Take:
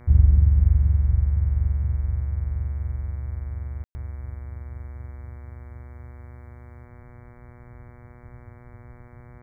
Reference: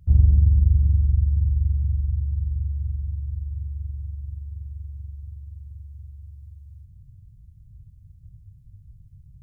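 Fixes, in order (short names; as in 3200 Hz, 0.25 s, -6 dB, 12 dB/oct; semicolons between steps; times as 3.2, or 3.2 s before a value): de-hum 121.4 Hz, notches 19; room tone fill 3.84–3.95; inverse comb 79 ms -12 dB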